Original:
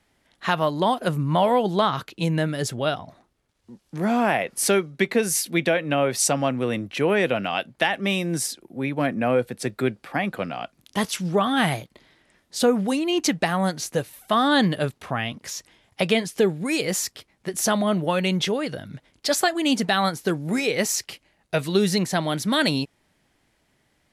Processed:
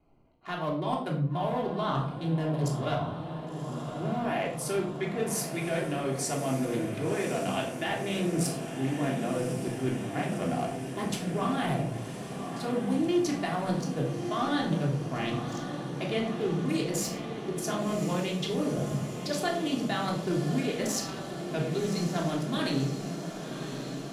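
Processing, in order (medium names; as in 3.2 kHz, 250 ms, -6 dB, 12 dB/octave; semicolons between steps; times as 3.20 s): local Wiener filter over 25 samples; vibrato 9.7 Hz 24 cents; reverse; compression 6:1, threshold -33 dBFS, peak gain reduction 17 dB; reverse; hum notches 50/100/150 Hz; on a send: echo that smears into a reverb 1099 ms, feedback 73%, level -9 dB; on the sum: simulated room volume 830 m³, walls furnished, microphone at 3.2 m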